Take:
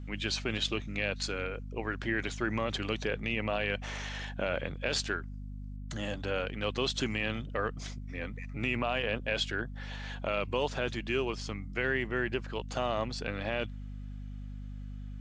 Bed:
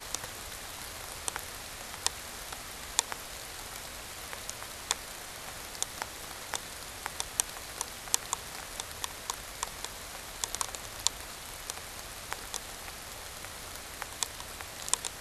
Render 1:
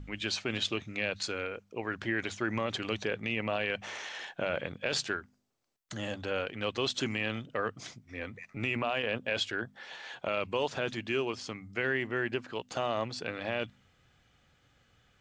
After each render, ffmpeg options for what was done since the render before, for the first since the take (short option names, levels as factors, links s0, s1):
-af "bandreject=f=50:t=h:w=4,bandreject=f=100:t=h:w=4,bandreject=f=150:t=h:w=4,bandreject=f=200:t=h:w=4,bandreject=f=250:t=h:w=4"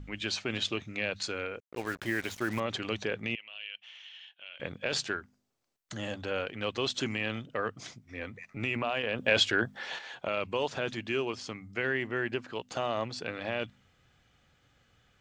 -filter_complex "[0:a]asettb=1/sr,asplit=3[s0][s1][s2];[s0]atrim=end=1.604[s3];[s1]atrim=start=1.6:end=2.6,asetpts=PTS-STARTPTS,afade=t=in:d=0.004:c=qsin,afade=t=out:st=0.996:d=0.004:c=qsin,acrusher=bits=6:mix=0:aa=0.5[s4];[s2]atrim=start=2.596[s5];[s3][s4]acrossfade=d=0.004:c1=hsin:c2=qsin[s6];[s6][s5]acrossfade=d=0.004:c1=qsin:c2=hsin,asettb=1/sr,asplit=3[s7][s8][s9];[s7]atrim=end=3.354[s10];[s8]atrim=start=3.35:end=4.6,asetpts=PTS-STARTPTS,afade=t=in:d=0.004:c=qsin,afade=t=out:st=1.246:d=0.004:c=qsin,bandpass=f=3000:t=q:w=5.9[s11];[s9]atrim=start=4.596[s12];[s10][s11]acrossfade=d=0.004:c1=hsin:c2=qsin[s13];[s13][s12]acrossfade=d=0.004:c1=qsin:c2=hsin,asettb=1/sr,asplit=3[s14][s15][s16];[s14]atrim=end=9.184[s17];[s15]atrim=start=9.18:end=9.99,asetpts=PTS-STARTPTS,afade=t=in:d=0.004:c=qsin,afade=t=out:st=0.806:d=0.004:c=qsin,acontrast=88[s18];[s16]atrim=start=9.986[s19];[s17][s18]acrossfade=d=0.004:c1=hsin:c2=qsin[s20];[s20][s19]acrossfade=d=0.004:c1=qsin:c2=hsin"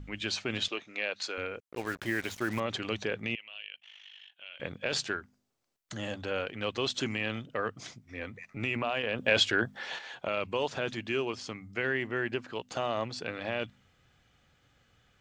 -filter_complex "[0:a]asettb=1/sr,asplit=3[s0][s1][s2];[s0]atrim=end=0.684[s3];[s1]atrim=start=0.68:end=1.38,asetpts=PTS-STARTPTS,afade=t=in:d=0.004:c=qsin,afade=t=out:st=0.696:d=0.004:c=qsin,highpass=400,lowpass=6900[s4];[s2]atrim=start=1.376[s5];[s3][s4]acrossfade=d=0.004:c1=hsin:c2=qsin[s6];[s6][s5]acrossfade=d=0.004:c1=qsin:c2=hsin,asettb=1/sr,asplit=3[s7][s8][s9];[s7]atrim=end=3.614[s10];[s8]atrim=start=3.61:end=4.32,asetpts=PTS-STARTPTS,afade=t=in:d=0.004:c=qsin,afade=t=out:st=0.706:d=0.004:c=qsin,aeval=exprs='val(0)*sin(2*PI*25*n/s)':c=same[s11];[s9]atrim=start=4.316[s12];[s10][s11]acrossfade=d=0.004:c1=hsin:c2=qsin[s13];[s13][s12]acrossfade=d=0.004:c1=qsin:c2=hsin"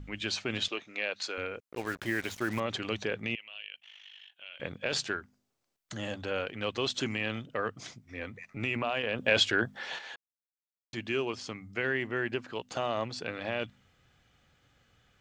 -filter_complex "[0:a]asplit=3[s0][s1][s2];[s0]atrim=end=10.16,asetpts=PTS-STARTPTS,afade=t=out:st=10.156:d=0.004:c=hsin[s3];[s1]atrim=start=10.16:end=10.93,asetpts=PTS-STARTPTS,volume=0[s4];[s2]atrim=start=10.93,asetpts=PTS-STARTPTS,afade=t=in:d=0.004:c=hsin[s5];[s3][s4][s5]concat=n=3:v=0:a=1"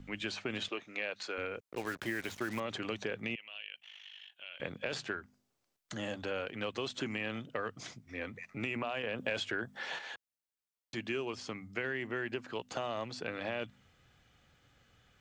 -filter_complex "[0:a]acrossover=split=130|2800|6400[s0][s1][s2][s3];[s0]acompressor=threshold=0.00141:ratio=4[s4];[s1]acompressor=threshold=0.02:ratio=4[s5];[s2]acompressor=threshold=0.00316:ratio=4[s6];[s3]acompressor=threshold=0.002:ratio=4[s7];[s4][s5][s6][s7]amix=inputs=4:normalize=0"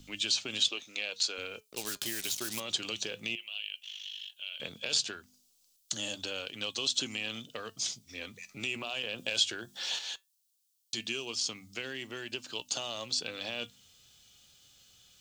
-af "aexciter=amount=11.2:drive=2.6:freq=2900,flanger=delay=3.2:depth=2.7:regen=83:speed=0.16:shape=triangular"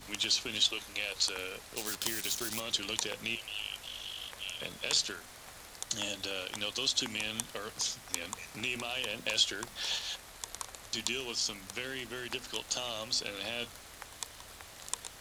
-filter_complex "[1:a]volume=0.398[s0];[0:a][s0]amix=inputs=2:normalize=0"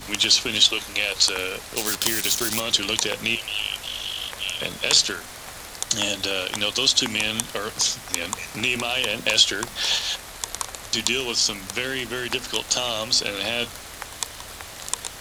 -af "volume=3.98,alimiter=limit=0.708:level=0:latency=1"